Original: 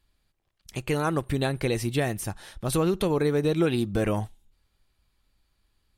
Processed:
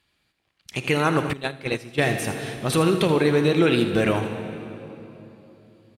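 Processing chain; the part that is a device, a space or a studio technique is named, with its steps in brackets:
PA in a hall (high-pass filter 110 Hz 12 dB per octave; parametric band 2,500 Hz +7 dB 1.4 octaves; single-tap delay 80 ms −12 dB; convolution reverb RT60 3.2 s, pre-delay 29 ms, DRR 7 dB)
0:01.33–0:02.03: noise gate −22 dBFS, range −16 dB
high-shelf EQ 12,000 Hz −8.5 dB
level +3.5 dB

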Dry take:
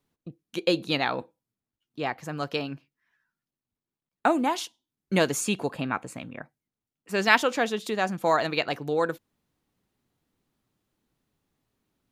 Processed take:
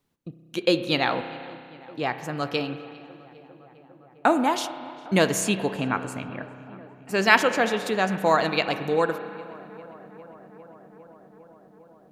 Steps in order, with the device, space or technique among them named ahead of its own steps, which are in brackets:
dub delay into a spring reverb (feedback echo with a low-pass in the loop 403 ms, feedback 83%, low-pass 2,500 Hz, level −21 dB; spring reverb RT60 2.3 s, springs 31 ms, chirp 35 ms, DRR 10 dB)
0:05.82–0:07.66: notch filter 3,600 Hz, Q 11
level +2.5 dB

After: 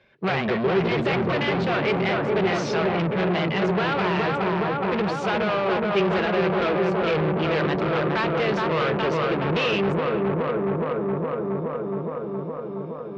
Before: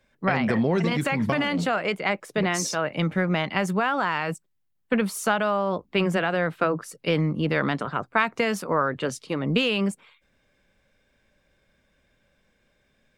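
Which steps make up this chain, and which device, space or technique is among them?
analogue delay pedal into a guitar amplifier (bucket-brigade delay 418 ms, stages 4,096, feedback 78%, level −4 dB; tube saturation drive 29 dB, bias 0.3; loudspeaker in its box 78–4,300 Hz, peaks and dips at 260 Hz −9 dB, 380 Hz +8 dB, 2,500 Hz +3 dB)
level +8 dB

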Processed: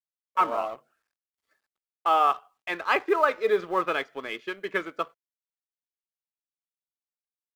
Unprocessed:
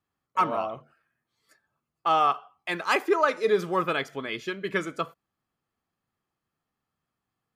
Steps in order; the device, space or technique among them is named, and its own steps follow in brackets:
phone line with mismatched companding (band-pass filter 330–3,200 Hz; mu-law and A-law mismatch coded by A)
level +1.5 dB

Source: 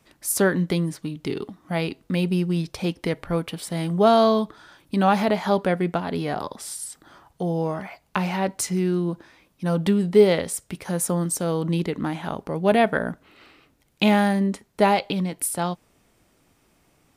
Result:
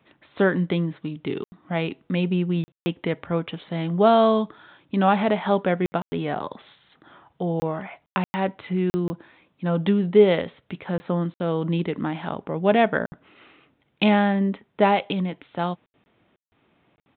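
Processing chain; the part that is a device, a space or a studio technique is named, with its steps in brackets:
call with lost packets (high-pass filter 100 Hz 12 dB per octave; downsampling to 8,000 Hz; dropped packets bursts)

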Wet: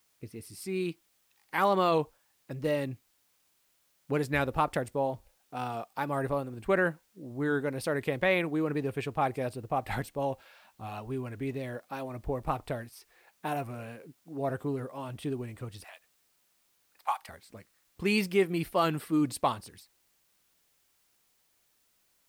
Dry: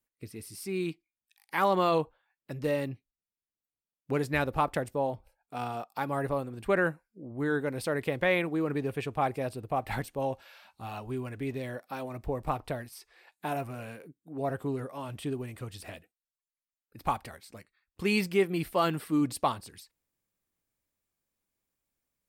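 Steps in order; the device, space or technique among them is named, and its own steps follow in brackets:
0:15.84–0:17.29: Chebyshev high-pass filter 830 Hz, order 3
plain cassette with noise reduction switched in (one half of a high-frequency compander decoder only; tape wow and flutter; white noise bed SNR 38 dB)

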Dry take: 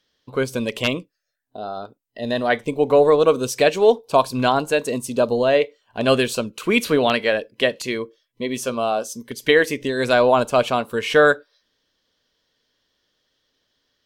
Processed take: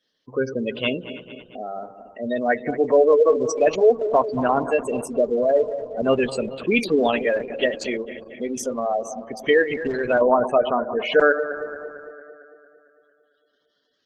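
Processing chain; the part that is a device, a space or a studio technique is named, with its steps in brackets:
feedback delay that plays each chunk backwards 113 ms, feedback 76%, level −12 dB
noise-suppressed video call (high-pass filter 140 Hz 12 dB per octave; gate on every frequency bin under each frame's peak −15 dB strong; level −1 dB; Opus 16 kbit/s 48,000 Hz)

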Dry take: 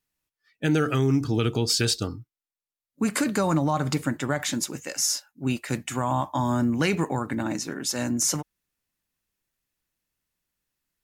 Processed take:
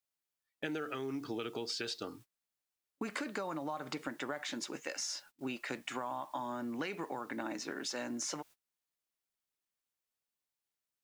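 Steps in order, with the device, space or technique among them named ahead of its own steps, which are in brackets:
baby monitor (band-pass filter 350–4,300 Hz; downward compressor 8 to 1, threshold −34 dBFS, peak gain reduction 13 dB; white noise bed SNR 26 dB; noise gate −53 dBFS, range −24 dB)
level −1.5 dB

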